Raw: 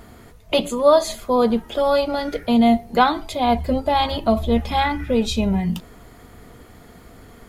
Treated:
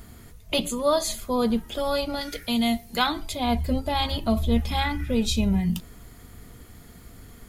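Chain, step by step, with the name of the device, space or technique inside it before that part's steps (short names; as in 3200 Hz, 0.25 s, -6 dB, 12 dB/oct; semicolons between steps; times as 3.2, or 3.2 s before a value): 2.21–3.07 tilt shelf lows -5.5 dB, about 1300 Hz; smiley-face EQ (low shelf 190 Hz +5.5 dB; bell 640 Hz -5.5 dB 2 oct; high shelf 5200 Hz +8.5 dB); gain -4 dB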